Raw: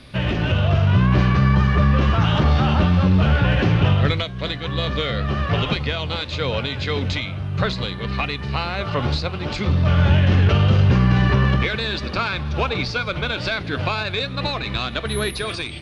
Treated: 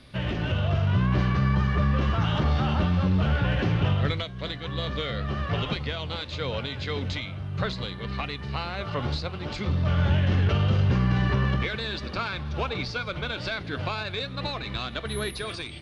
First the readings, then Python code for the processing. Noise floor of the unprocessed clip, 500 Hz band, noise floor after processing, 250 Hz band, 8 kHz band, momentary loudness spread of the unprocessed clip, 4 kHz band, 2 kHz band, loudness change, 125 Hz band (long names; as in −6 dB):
−30 dBFS, −7.0 dB, −37 dBFS, −7.0 dB, can't be measured, 9 LU, −7.0 dB, −7.5 dB, −7.0 dB, −7.0 dB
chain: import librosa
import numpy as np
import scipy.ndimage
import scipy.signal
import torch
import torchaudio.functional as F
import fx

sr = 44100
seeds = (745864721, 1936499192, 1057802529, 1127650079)

y = fx.notch(x, sr, hz=2500.0, q=23.0)
y = y * 10.0 ** (-7.0 / 20.0)